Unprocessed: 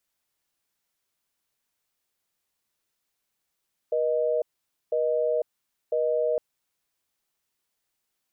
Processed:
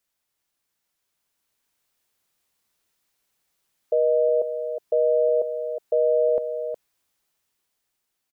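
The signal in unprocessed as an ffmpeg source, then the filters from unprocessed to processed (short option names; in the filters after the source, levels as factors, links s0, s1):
-f lavfi -i "aevalsrc='0.0596*(sin(2*PI*480*t)+sin(2*PI*620*t))*clip(min(mod(t,1),0.5-mod(t,1))/0.005,0,1)':d=2.46:s=44100"
-filter_complex "[0:a]asplit=2[s0][s1];[s1]aecho=0:1:364:0.355[s2];[s0][s2]amix=inputs=2:normalize=0,dynaudnorm=f=220:g=13:m=1.78"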